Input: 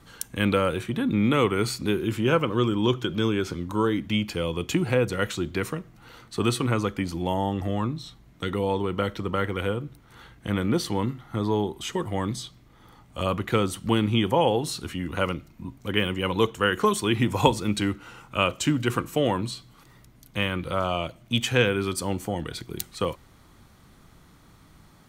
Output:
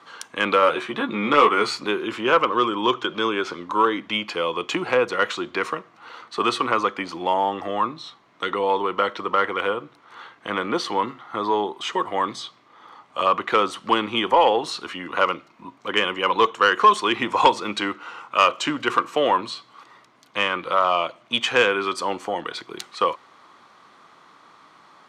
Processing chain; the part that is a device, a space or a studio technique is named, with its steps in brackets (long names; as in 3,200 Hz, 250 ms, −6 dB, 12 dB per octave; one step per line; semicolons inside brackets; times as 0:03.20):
intercom (band-pass filter 450–4,600 Hz; parametric band 1,100 Hz +8 dB 0.51 octaves; soft clipping −11.5 dBFS, distortion −19 dB)
0:00.61–0:01.86: double-tracking delay 14 ms −4.5 dB
level +6 dB